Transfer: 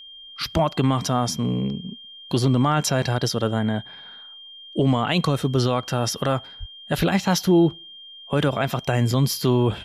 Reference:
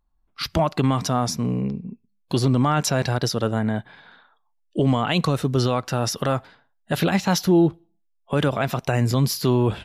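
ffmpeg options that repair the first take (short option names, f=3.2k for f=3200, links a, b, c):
-filter_complex "[0:a]bandreject=f=3.2k:w=30,asplit=3[a][b][c];[a]afade=t=out:st=6.59:d=0.02[d];[b]highpass=f=140:w=0.5412,highpass=f=140:w=1.3066,afade=t=in:st=6.59:d=0.02,afade=t=out:st=6.71:d=0.02[e];[c]afade=t=in:st=6.71:d=0.02[f];[d][e][f]amix=inputs=3:normalize=0,asplit=3[g][h][i];[g]afade=t=out:st=6.97:d=0.02[j];[h]highpass=f=140:w=0.5412,highpass=f=140:w=1.3066,afade=t=in:st=6.97:d=0.02,afade=t=out:st=7.09:d=0.02[k];[i]afade=t=in:st=7.09:d=0.02[l];[j][k][l]amix=inputs=3:normalize=0"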